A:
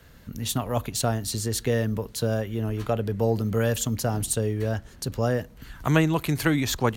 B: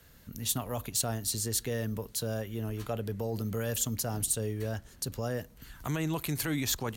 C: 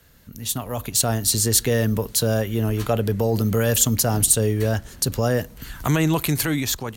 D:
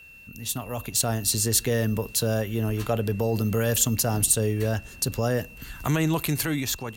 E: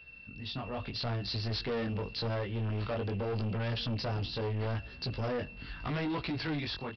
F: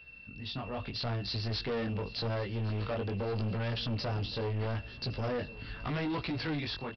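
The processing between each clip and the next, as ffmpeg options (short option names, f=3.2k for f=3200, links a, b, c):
-af "alimiter=limit=-16dB:level=0:latency=1:release=23,aemphasis=mode=production:type=cd,volume=-7dB"
-af "dynaudnorm=f=370:g=5:m=10dB,volume=3dB"
-af "aeval=exprs='val(0)+0.00794*sin(2*PI*2700*n/s)':c=same,volume=-4dB"
-af "flanger=delay=16:depth=5.6:speed=0.81,aresample=11025,asoftclip=type=tanh:threshold=-30dB,aresample=44100"
-af "aecho=1:1:1113|2226|3339:0.106|0.0455|0.0196"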